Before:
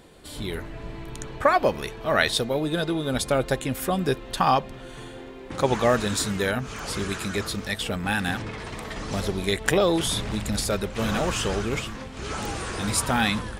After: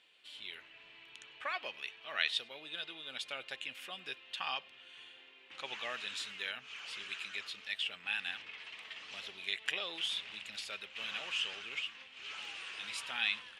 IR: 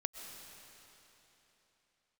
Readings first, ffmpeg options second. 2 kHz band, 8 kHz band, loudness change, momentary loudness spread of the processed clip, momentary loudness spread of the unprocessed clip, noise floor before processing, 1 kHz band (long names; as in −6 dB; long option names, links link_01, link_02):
−9.5 dB, −21.0 dB, −13.5 dB, 16 LU, 14 LU, −40 dBFS, −20.5 dB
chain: -filter_complex "[0:a]bandpass=frequency=2800:width_type=q:width=4:csg=0[link_01];[1:a]atrim=start_sample=2205,afade=type=out:start_time=0.15:duration=0.01,atrim=end_sample=7056[link_02];[link_01][link_02]afir=irnorm=-1:irlink=0,volume=1dB"